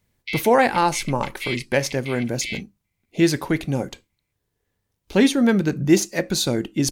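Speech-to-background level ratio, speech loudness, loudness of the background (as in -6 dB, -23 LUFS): 11.0 dB, -21.5 LUFS, -32.5 LUFS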